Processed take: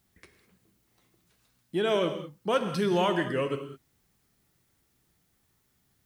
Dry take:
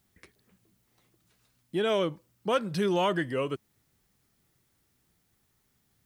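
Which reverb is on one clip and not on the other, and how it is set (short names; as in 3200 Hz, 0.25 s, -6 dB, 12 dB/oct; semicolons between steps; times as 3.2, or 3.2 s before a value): non-linear reverb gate 0.23 s flat, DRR 7 dB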